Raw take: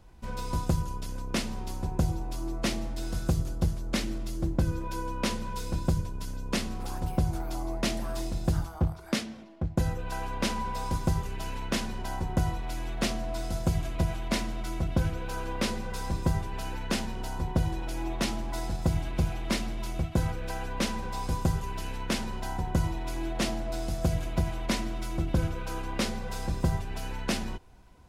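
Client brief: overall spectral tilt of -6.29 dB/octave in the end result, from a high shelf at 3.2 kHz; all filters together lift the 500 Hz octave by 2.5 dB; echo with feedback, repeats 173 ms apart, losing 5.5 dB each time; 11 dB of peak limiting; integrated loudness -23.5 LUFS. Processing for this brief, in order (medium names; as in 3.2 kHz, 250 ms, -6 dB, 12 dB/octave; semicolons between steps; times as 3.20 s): peaking EQ 500 Hz +3.5 dB; treble shelf 3.2 kHz -8.5 dB; peak limiter -25 dBFS; feedback delay 173 ms, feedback 53%, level -5.5 dB; trim +10.5 dB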